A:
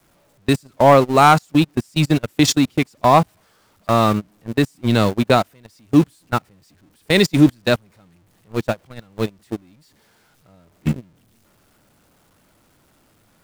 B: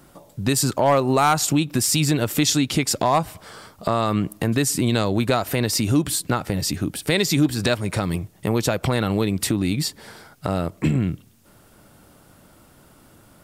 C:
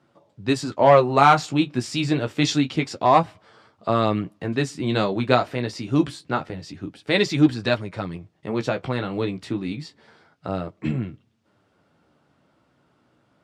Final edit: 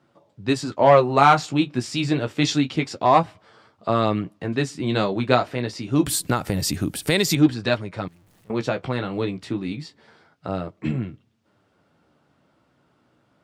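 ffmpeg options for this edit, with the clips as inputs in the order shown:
ffmpeg -i take0.wav -i take1.wav -i take2.wav -filter_complex "[2:a]asplit=3[link_01][link_02][link_03];[link_01]atrim=end=6.062[link_04];[1:a]atrim=start=6.058:end=7.352[link_05];[link_02]atrim=start=7.348:end=8.082[link_06];[0:a]atrim=start=8.078:end=8.502[link_07];[link_03]atrim=start=8.498[link_08];[link_04][link_05]acrossfade=duration=0.004:curve1=hsin:curve2=hsin[link_09];[link_09][link_06]acrossfade=duration=0.004:curve1=hsin:curve2=hsin[link_10];[link_10][link_07]acrossfade=duration=0.004:curve1=hsin:curve2=hsin[link_11];[link_11][link_08]acrossfade=duration=0.004:curve1=hsin:curve2=hsin" out.wav

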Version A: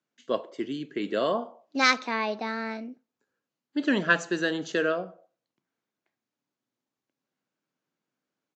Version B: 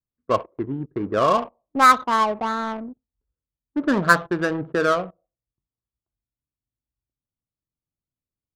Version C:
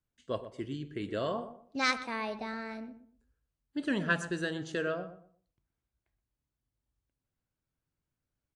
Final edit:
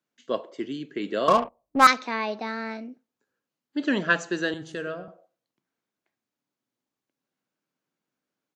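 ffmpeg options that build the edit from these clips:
ffmpeg -i take0.wav -i take1.wav -i take2.wav -filter_complex "[0:a]asplit=3[link_01][link_02][link_03];[link_01]atrim=end=1.282[link_04];[1:a]atrim=start=1.278:end=1.872[link_05];[link_02]atrim=start=1.868:end=4.542[link_06];[2:a]atrim=start=4.538:end=5.082[link_07];[link_03]atrim=start=5.078[link_08];[link_04][link_05]acrossfade=duration=0.004:curve1=hsin:curve2=hsin[link_09];[link_09][link_06]acrossfade=duration=0.004:curve1=hsin:curve2=hsin[link_10];[link_10][link_07]acrossfade=duration=0.004:curve1=hsin:curve2=hsin[link_11];[link_11][link_08]acrossfade=duration=0.004:curve1=hsin:curve2=hsin" out.wav

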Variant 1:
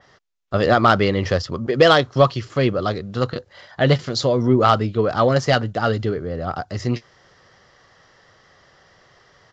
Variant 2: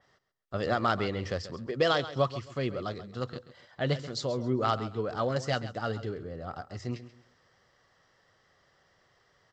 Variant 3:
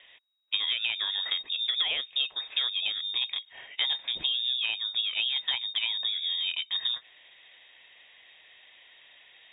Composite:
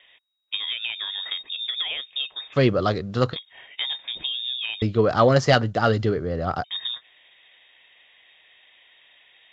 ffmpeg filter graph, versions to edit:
ffmpeg -i take0.wav -i take1.wav -i take2.wav -filter_complex "[0:a]asplit=2[link_01][link_02];[2:a]asplit=3[link_03][link_04][link_05];[link_03]atrim=end=2.58[link_06];[link_01]atrim=start=2.52:end=3.37[link_07];[link_04]atrim=start=3.31:end=4.822[link_08];[link_02]atrim=start=4.818:end=6.642[link_09];[link_05]atrim=start=6.638[link_10];[link_06][link_07]acrossfade=duration=0.06:curve1=tri:curve2=tri[link_11];[link_11][link_08]acrossfade=duration=0.06:curve1=tri:curve2=tri[link_12];[link_12][link_09]acrossfade=duration=0.004:curve1=hsin:curve2=hsin[link_13];[link_13][link_10]acrossfade=duration=0.004:curve1=hsin:curve2=hsin" out.wav

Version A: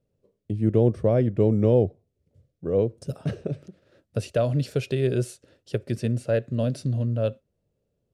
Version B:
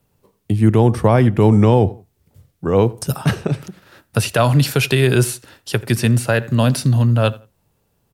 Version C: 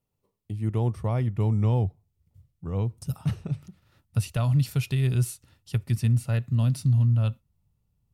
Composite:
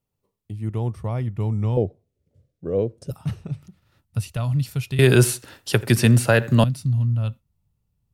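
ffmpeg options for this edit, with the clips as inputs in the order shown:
ffmpeg -i take0.wav -i take1.wav -i take2.wav -filter_complex "[2:a]asplit=3[link_01][link_02][link_03];[link_01]atrim=end=1.772[link_04];[0:a]atrim=start=1.768:end=3.112[link_05];[link_02]atrim=start=3.108:end=4.992[link_06];[1:a]atrim=start=4.988:end=6.642[link_07];[link_03]atrim=start=6.638[link_08];[link_04][link_05]acrossfade=duration=0.004:curve1=hsin:curve2=hsin[link_09];[link_09][link_06]acrossfade=duration=0.004:curve1=hsin:curve2=hsin[link_10];[link_10][link_07]acrossfade=duration=0.004:curve1=hsin:curve2=hsin[link_11];[link_11][link_08]acrossfade=duration=0.004:curve1=hsin:curve2=hsin" out.wav

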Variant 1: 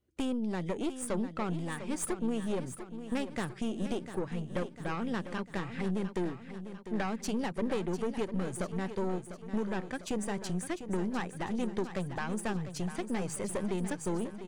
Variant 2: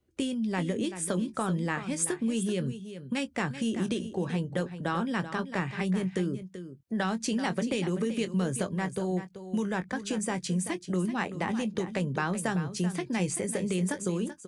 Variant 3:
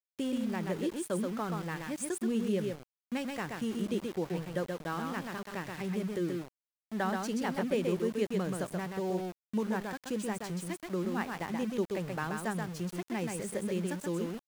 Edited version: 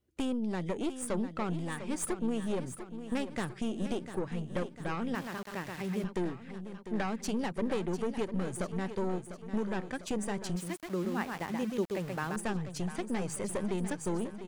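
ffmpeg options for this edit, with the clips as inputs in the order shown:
ffmpeg -i take0.wav -i take1.wav -i take2.wav -filter_complex "[2:a]asplit=2[link_01][link_02];[0:a]asplit=3[link_03][link_04][link_05];[link_03]atrim=end=5.152[link_06];[link_01]atrim=start=5.148:end=6.042[link_07];[link_04]atrim=start=6.038:end=10.562[link_08];[link_02]atrim=start=10.558:end=12.362[link_09];[link_05]atrim=start=12.358[link_10];[link_06][link_07]acrossfade=duration=0.004:curve1=hsin:curve2=hsin[link_11];[link_11][link_08]acrossfade=duration=0.004:curve1=hsin:curve2=hsin[link_12];[link_12][link_09]acrossfade=duration=0.004:curve1=hsin:curve2=hsin[link_13];[link_13][link_10]acrossfade=duration=0.004:curve1=hsin:curve2=hsin" out.wav

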